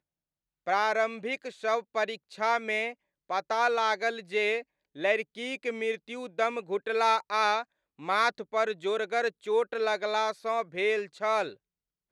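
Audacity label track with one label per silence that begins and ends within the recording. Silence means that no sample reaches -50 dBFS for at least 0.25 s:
2.940000	3.290000	silence
4.630000	4.950000	silence
7.640000	7.990000	silence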